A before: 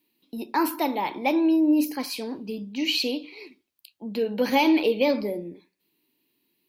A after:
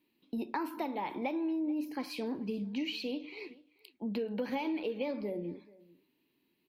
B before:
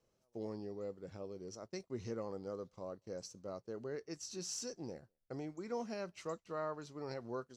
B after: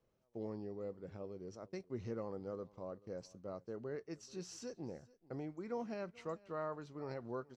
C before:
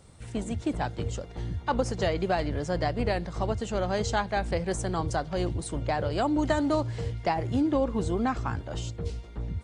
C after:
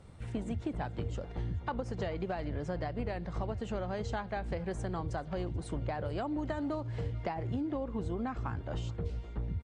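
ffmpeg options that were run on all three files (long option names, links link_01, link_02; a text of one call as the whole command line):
ffmpeg -i in.wav -filter_complex "[0:a]acompressor=threshold=-32dB:ratio=6,bass=frequency=250:gain=2,treble=frequency=4000:gain=-11,asplit=2[link_01][link_02];[link_02]aecho=0:1:434:0.075[link_03];[link_01][link_03]amix=inputs=2:normalize=0,volume=-1dB" out.wav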